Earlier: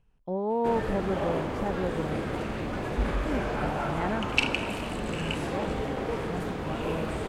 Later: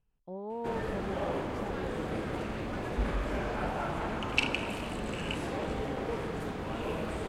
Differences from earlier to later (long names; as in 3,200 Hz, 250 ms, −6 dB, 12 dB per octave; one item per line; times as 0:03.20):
speech −10.5 dB
background −3.5 dB